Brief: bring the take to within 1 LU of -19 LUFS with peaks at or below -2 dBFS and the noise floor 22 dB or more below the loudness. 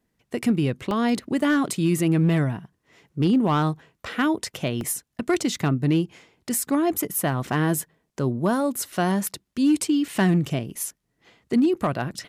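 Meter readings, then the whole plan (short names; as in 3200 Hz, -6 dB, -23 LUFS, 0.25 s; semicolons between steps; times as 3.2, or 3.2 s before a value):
clipped 0.3%; flat tops at -13.5 dBFS; dropouts 3; longest dropout 1.4 ms; loudness -24.0 LUFS; peak -13.5 dBFS; loudness target -19.0 LUFS
-> clip repair -13.5 dBFS; interpolate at 0.91/4.81/8.96, 1.4 ms; gain +5 dB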